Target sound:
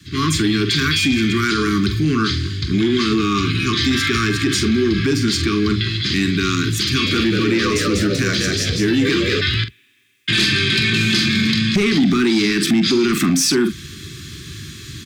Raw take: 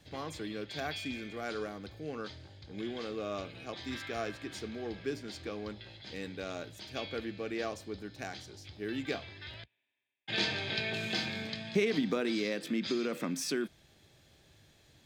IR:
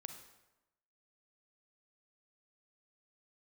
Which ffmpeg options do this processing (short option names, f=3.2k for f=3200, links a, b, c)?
-filter_complex "[0:a]highpass=71,asoftclip=type=tanh:threshold=-26dB,asuperstop=centerf=660:order=20:qfactor=1,highshelf=f=8.9k:g=-7,asplit=2[a][b];[b]adelay=45,volume=-11dB[c];[a][c]amix=inputs=2:normalize=0,asplit=3[d][e][f];[d]afade=t=out:st=7.05:d=0.02[g];[e]asplit=6[h][i][j][k][l][m];[i]adelay=192,afreqshift=79,volume=-5dB[n];[j]adelay=384,afreqshift=158,volume=-12.7dB[o];[k]adelay=576,afreqshift=237,volume=-20.5dB[p];[l]adelay=768,afreqshift=316,volume=-28.2dB[q];[m]adelay=960,afreqshift=395,volume=-36dB[r];[h][n][o][p][q][r]amix=inputs=6:normalize=0,afade=t=in:st=7.05:d=0.02,afade=t=out:st=9.4:d=0.02[s];[f]afade=t=in:st=9.4:d=0.02[t];[g][s][t]amix=inputs=3:normalize=0,dynaudnorm=f=120:g=3:m=13.5dB,bass=f=250:g=5,treble=f=4k:g=6,acompressor=threshold=-23dB:ratio=1.5,aeval=exprs='0.398*sin(PI/2*1.58*val(0)/0.398)':c=same,alimiter=level_in=14dB:limit=-1dB:release=50:level=0:latency=1,volume=-8.5dB"